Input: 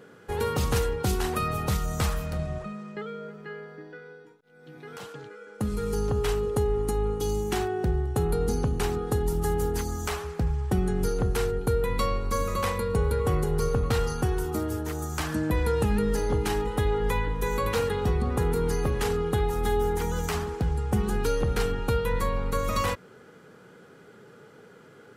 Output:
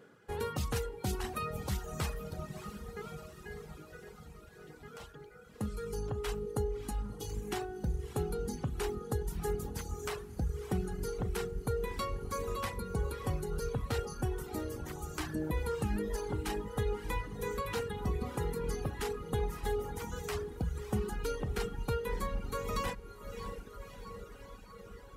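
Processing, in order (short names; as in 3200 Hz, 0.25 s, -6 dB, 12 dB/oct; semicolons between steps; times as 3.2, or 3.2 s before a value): diffused feedback echo 0.606 s, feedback 69%, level -9 dB; reverb removal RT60 1.6 s; gain -7.5 dB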